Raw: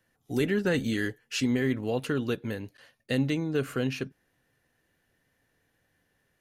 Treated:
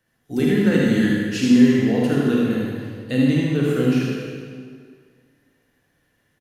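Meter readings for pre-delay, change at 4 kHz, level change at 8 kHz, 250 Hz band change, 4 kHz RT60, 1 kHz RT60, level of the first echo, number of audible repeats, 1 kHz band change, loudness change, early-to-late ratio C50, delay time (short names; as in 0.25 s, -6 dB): 36 ms, +5.5 dB, n/a, +13.0 dB, 1.6 s, 2.0 s, -5.0 dB, 1, +7.0 dB, +10.5 dB, -3.5 dB, 78 ms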